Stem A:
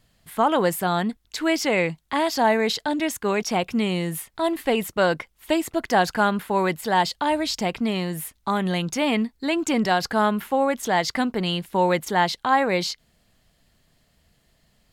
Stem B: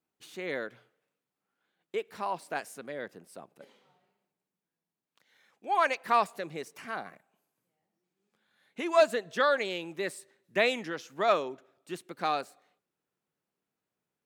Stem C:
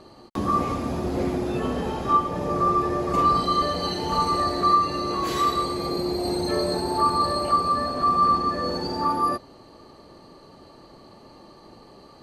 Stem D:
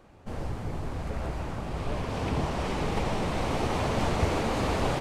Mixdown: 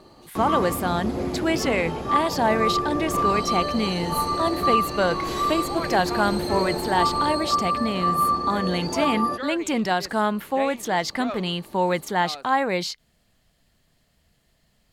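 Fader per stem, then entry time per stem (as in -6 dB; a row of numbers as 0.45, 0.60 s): -2.0, -7.5, -2.0, -10.5 dB; 0.00, 0.00, 0.00, 2.30 s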